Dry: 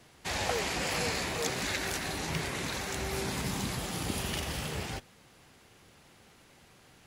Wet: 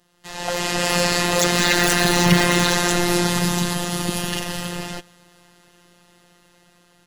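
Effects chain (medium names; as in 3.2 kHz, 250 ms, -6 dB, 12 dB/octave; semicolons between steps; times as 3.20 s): Doppler pass-by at 2.25 s, 8 m/s, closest 5.4 m; robot voice 175 Hz; band-stop 2.3 kHz, Q 10; hard clipper -22.5 dBFS, distortion -18 dB; level rider gain up to 14 dB; trim +7.5 dB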